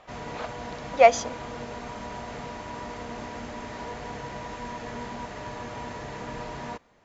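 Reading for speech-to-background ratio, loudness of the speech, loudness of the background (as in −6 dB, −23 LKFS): 17.5 dB, −20.0 LKFS, −37.5 LKFS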